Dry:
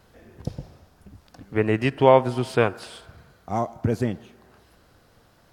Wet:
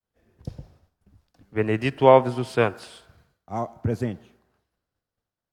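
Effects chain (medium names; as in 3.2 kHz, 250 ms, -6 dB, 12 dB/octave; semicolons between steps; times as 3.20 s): expander -48 dBFS; three bands expanded up and down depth 40%; trim -2.5 dB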